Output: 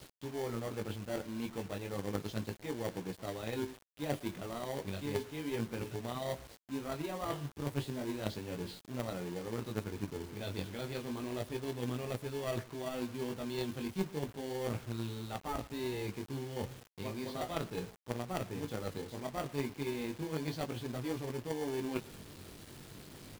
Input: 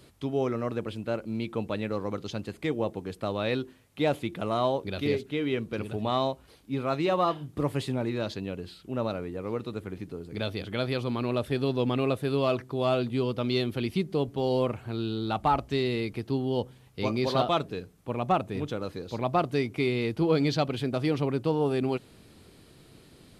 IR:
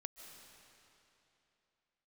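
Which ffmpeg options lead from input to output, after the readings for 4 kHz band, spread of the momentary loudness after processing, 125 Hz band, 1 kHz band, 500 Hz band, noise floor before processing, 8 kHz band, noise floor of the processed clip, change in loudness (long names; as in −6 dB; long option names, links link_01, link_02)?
−9.5 dB, 4 LU, −8.5 dB, −13.0 dB, −10.5 dB, −55 dBFS, can't be measured, −56 dBFS, −10.0 dB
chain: -filter_complex "[0:a]areverse,acompressor=threshold=-38dB:ratio=6,areverse,flanger=delay=16.5:depth=4.9:speed=0.33,asplit=2[link_01][link_02];[link_02]acrusher=samples=34:mix=1:aa=0.000001,volume=-6dB[link_03];[link_01][link_03]amix=inputs=2:normalize=0,asplit=2[link_04][link_05];[link_05]adelay=114,lowpass=frequency=4400:poles=1,volume=-18.5dB,asplit=2[link_06][link_07];[link_07]adelay=114,lowpass=frequency=4400:poles=1,volume=0.29[link_08];[link_04][link_06][link_08]amix=inputs=3:normalize=0,acrusher=bits=8:mix=0:aa=0.000001,aeval=exprs='0.0562*(cos(1*acos(clip(val(0)/0.0562,-1,1)))-cos(1*PI/2))+0.01*(cos(3*acos(clip(val(0)/0.0562,-1,1)))-cos(3*PI/2))':channel_layout=same,volume=8dB"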